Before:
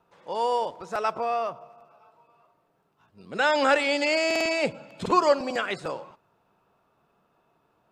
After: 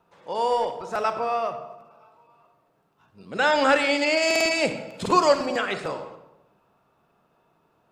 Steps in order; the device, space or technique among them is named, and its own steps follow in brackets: saturated reverb return (on a send at -7.5 dB: reverb RT60 0.90 s, pre-delay 32 ms + soft clip -17 dBFS, distortion -16 dB); 4.22–5.46 on the sum: high shelf 4600 Hz +7.5 dB; gain +1.5 dB

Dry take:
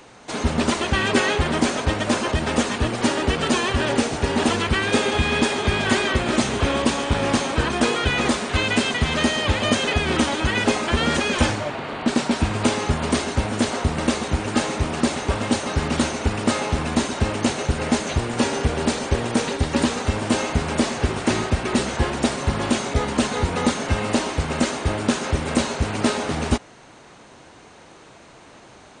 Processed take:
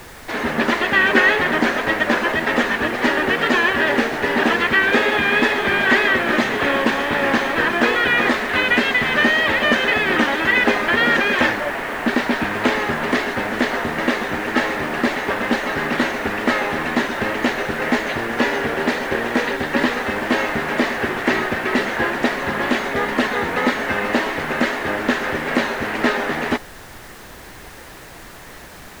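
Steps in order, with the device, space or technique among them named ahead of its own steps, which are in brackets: horn gramophone (BPF 240–3300 Hz; bell 1800 Hz +10.5 dB 0.44 oct; wow and flutter; pink noise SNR 21 dB); gain +3 dB

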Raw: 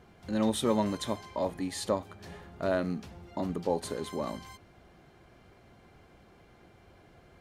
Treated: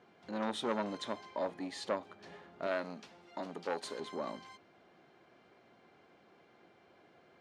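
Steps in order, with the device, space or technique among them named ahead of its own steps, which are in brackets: public-address speaker with an overloaded transformer (core saturation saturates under 980 Hz; BPF 240–5100 Hz); 2.67–4 tilt +2 dB/oct; gain -3.5 dB

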